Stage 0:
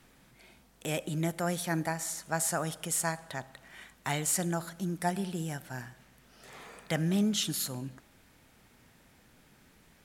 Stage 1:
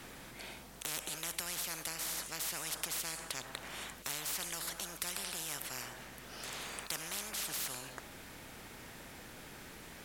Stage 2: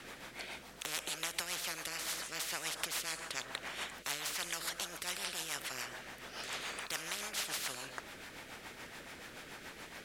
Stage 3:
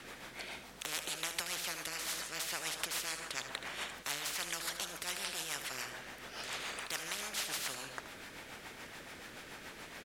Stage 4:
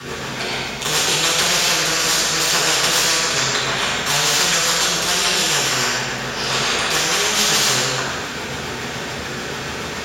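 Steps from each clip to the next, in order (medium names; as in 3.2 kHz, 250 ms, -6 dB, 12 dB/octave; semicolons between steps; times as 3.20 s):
spectrum-flattening compressor 10:1; trim -1 dB
companded quantiser 8-bit; overdrive pedal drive 10 dB, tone 4.1 kHz, clips at -15.5 dBFS; rotary cabinet horn 7 Hz; trim +1.5 dB
delay 76 ms -11 dB
reverberation RT60 1.4 s, pre-delay 3 ms, DRR -11.5 dB; trim +8.5 dB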